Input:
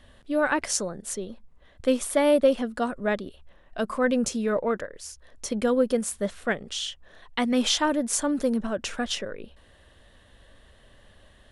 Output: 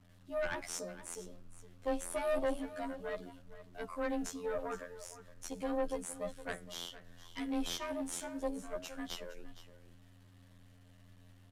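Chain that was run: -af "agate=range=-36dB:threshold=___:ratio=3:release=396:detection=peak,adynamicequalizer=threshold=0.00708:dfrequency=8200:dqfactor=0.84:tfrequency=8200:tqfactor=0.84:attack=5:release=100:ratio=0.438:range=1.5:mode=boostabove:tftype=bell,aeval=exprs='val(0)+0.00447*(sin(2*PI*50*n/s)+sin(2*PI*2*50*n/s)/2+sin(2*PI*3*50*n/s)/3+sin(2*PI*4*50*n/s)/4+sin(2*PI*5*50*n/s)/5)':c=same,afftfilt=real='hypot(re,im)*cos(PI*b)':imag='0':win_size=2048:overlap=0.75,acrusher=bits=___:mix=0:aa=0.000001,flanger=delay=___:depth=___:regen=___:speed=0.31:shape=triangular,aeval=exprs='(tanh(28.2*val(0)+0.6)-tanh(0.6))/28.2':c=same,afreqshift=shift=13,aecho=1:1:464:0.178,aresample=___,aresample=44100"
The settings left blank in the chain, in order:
-49dB, 9, 4.7, 6.5, 89, 32000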